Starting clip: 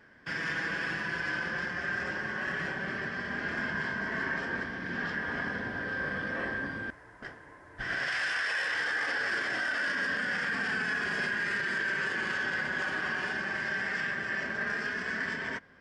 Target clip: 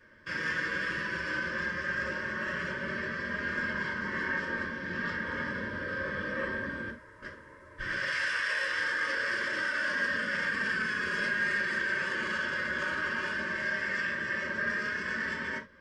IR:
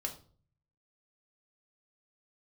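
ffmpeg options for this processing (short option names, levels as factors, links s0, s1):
-filter_complex "[0:a]asuperstop=centerf=750:order=20:qfactor=2.7[s0];[1:a]atrim=start_sample=2205,atrim=end_sample=3969[s1];[s0][s1]afir=irnorm=-1:irlink=0"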